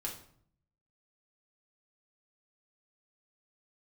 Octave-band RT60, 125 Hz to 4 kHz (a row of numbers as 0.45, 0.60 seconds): 1.0, 0.80, 0.60, 0.55, 0.50, 0.45 seconds